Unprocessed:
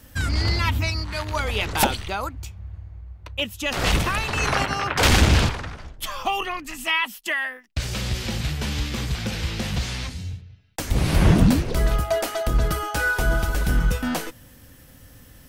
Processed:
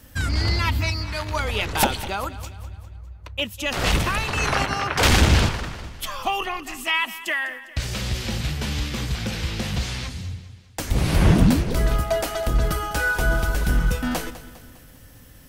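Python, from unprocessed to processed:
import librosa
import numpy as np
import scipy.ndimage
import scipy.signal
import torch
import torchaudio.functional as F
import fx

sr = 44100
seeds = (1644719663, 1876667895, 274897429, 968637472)

y = fx.echo_feedback(x, sr, ms=202, feedback_pct=50, wet_db=-15.5)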